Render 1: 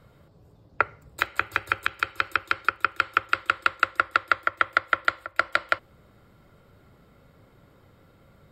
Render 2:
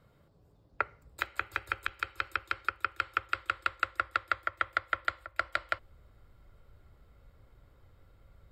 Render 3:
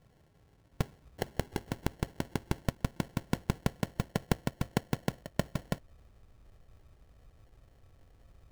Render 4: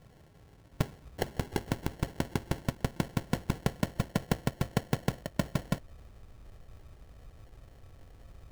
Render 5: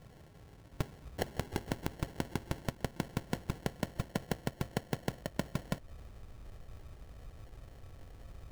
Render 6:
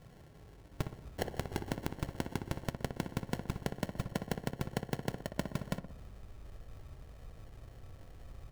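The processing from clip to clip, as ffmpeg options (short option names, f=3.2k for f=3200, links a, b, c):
-af "asubboost=boost=9:cutoff=60,volume=-8.5dB"
-af "acrusher=samples=36:mix=1:aa=0.000001"
-af "asoftclip=type=tanh:threshold=-24dB,volume=7dB"
-af "acompressor=threshold=-32dB:ratio=6,volume=1.5dB"
-filter_complex "[0:a]asplit=2[a][b];[b]adelay=61,lowpass=f=1.4k:p=1,volume=-7dB,asplit=2[c][d];[d]adelay=61,lowpass=f=1.4k:p=1,volume=0.52,asplit=2[e][f];[f]adelay=61,lowpass=f=1.4k:p=1,volume=0.52,asplit=2[g][h];[h]adelay=61,lowpass=f=1.4k:p=1,volume=0.52,asplit=2[i][j];[j]adelay=61,lowpass=f=1.4k:p=1,volume=0.52,asplit=2[k][l];[l]adelay=61,lowpass=f=1.4k:p=1,volume=0.52[m];[a][c][e][g][i][k][m]amix=inputs=7:normalize=0,volume=-1dB"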